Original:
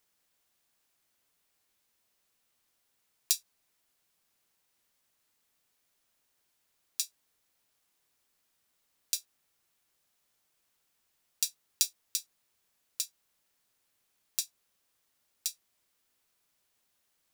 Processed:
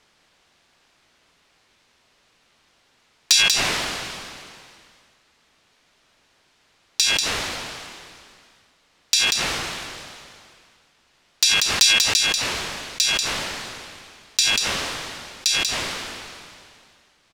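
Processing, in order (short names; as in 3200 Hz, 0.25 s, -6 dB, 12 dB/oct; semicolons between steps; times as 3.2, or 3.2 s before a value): LPF 4300 Hz 12 dB/oct; de-hum 101.1 Hz, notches 35; sine folder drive 10 dB, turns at -13 dBFS; on a send: echo 0.189 s -17.5 dB; on the sum: sustainer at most 26 dB/s; gain +7 dB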